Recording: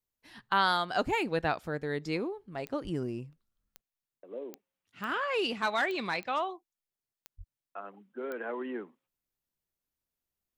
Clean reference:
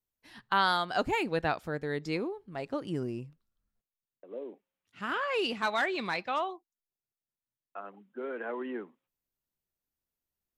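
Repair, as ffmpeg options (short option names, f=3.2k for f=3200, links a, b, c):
-filter_complex "[0:a]adeclick=t=4,asplit=3[a][b][c];[a]afade=t=out:st=2.83:d=0.02[d];[b]highpass=f=140:w=0.5412,highpass=f=140:w=1.3066,afade=t=in:st=2.83:d=0.02,afade=t=out:st=2.95:d=0.02[e];[c]afade=t=in:st=2.95:d=0.02[f];[d][e][f]amix=inputs=3:normalize=0,asplit=3[g][h][i];[g]afade=t=out:st=7.37:d=0.02[j];[h]highpass=f=140:w=0.5412,highpass=f=140:w=1.3066,afade=t=in:st=7.37:d=0.02,afade=t=out:st=7.49:d=0.02[k];[i]afade=t=in:st=7.49:d=0.02[l];[j][k][l]amix=inputs=3:normalize=0"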